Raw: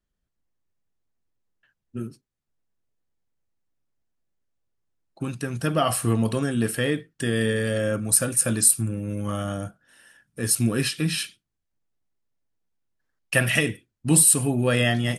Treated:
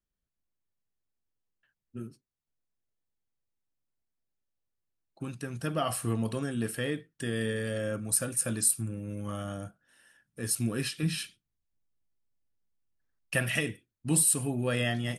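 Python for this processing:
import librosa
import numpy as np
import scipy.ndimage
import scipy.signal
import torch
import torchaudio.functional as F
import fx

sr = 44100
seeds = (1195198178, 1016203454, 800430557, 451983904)

y = fx.low_shelf(x, sr, hz=190.0, db=7.5, at=(11.03, 13.36))
y = y * librosa.db_to_amplitude(-8.0)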